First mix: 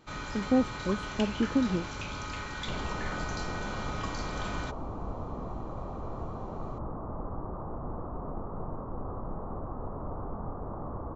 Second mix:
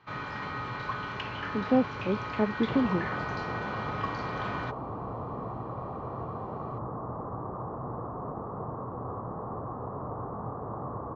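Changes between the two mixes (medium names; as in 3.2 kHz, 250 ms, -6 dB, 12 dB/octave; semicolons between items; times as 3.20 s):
speech: entry +1.20 s; master: add cabinet simulation 100–4200 Hz, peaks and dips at 120 Hz +8 dB, 450 Hz +4 dB, 760 Hz +3 dB, 1.1 kHz +6 dB, 1.8 kHz +5 dB, 3.7 kHz -4 dB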